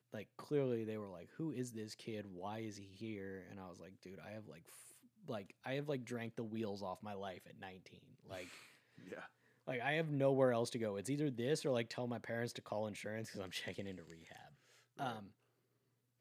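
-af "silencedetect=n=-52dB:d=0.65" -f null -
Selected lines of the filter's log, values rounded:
silence_start: 15.27
silence_end: 16.21 | silence_duration: 0.94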